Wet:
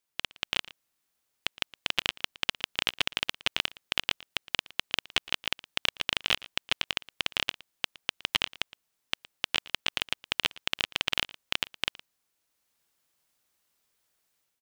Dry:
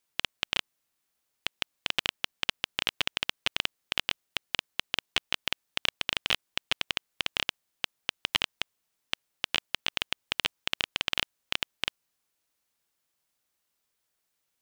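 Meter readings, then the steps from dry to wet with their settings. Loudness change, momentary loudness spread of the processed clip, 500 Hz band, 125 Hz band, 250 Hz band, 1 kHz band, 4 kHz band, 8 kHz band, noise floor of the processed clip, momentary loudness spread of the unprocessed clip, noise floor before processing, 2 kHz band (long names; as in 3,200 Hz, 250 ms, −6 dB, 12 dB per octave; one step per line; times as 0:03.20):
+0.5 dB, 6 LU, +0.5 dB, +0.5 dB, +0.5 dB, +0.5 dB, +0.5 dB, +0.5 dB, −79 dBFS, 5 LU, −80 dBFS, +0.5 dB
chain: automatic gain control gain up to 8 dB
on a send: single-tap delay 115 ms −20.5 dB
on the sum: level −4 dB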